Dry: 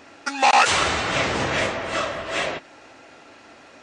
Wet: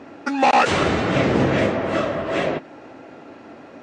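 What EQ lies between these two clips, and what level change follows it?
high-pass filter 190 Hz 12 dB per octave
dynamic equaliser 950 Hz, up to −5 dB, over −30 dBFS, Q 1.3
spectral tilt −4.5 dB per octave
+3.5 dB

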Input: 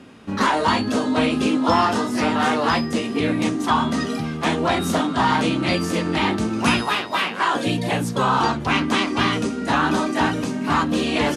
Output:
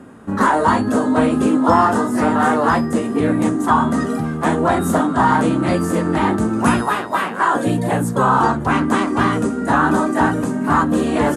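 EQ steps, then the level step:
flat-topped bell 3,600 Hz −13 dB
+4.5 dB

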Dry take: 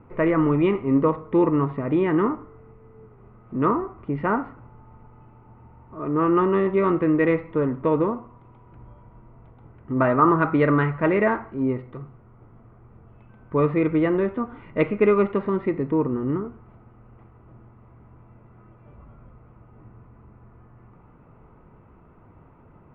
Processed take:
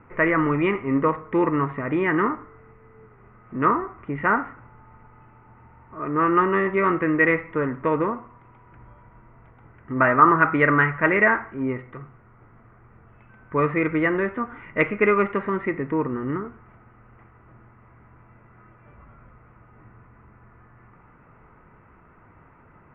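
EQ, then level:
low-pass filter 3,200 Hz 24 dB per octave
parametric band 1,800 Hz +13.5 dB 1.3 octaves
−3.0 dB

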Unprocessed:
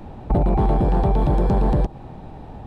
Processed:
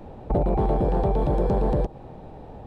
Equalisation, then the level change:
parametric band 500 Hz +8 dB 0.82 octaves
−5.5 dB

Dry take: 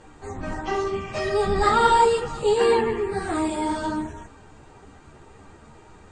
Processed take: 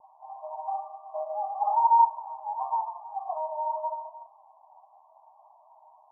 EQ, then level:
linear-phase brick-wall high-pass 600 Hz
Chebyshev low-pass filter 1,100 Hz, order 10
0.0 dB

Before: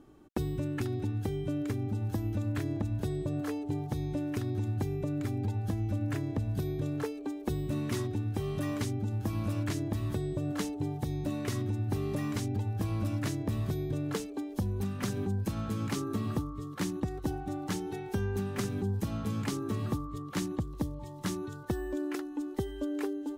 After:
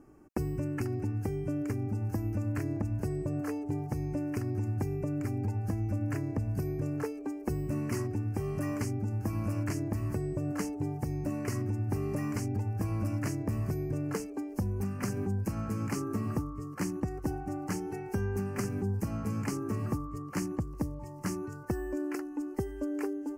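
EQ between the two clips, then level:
Butterworth band-reject 3,600 Hz, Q 1.6
0.0 dB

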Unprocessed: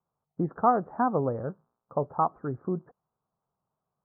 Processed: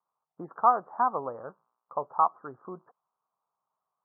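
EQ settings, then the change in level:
resonant band-pass 1,100 Hz, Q 2.5
high-frequency loss of the air 480 metres
+7.5 dB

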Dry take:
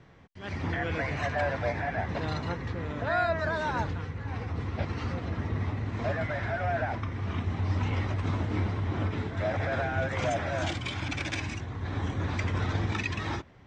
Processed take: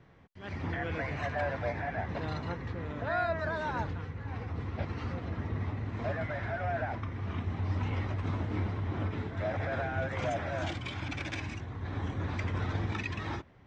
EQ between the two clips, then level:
high-shelf EQ 5,400 Hz −8.5 dB
−3.5 dB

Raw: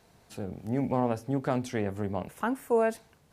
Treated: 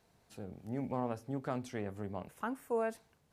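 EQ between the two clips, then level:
dynamic equaliser 1,200 Hz, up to +4 dB, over −47 dBFS, Q 3.8
−9.0 dB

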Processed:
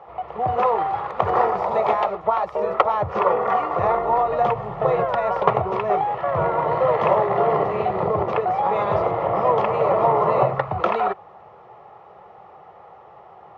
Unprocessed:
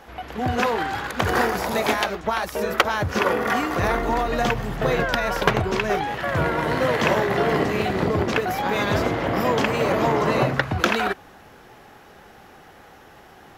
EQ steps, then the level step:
high-pass filter 130 Hz 12 dB per octave
low-pass with resonance 1,400 Hz, resonance Q 3.7
phaser with its sweep stopped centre 640 Hz, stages 4
+3.0 dB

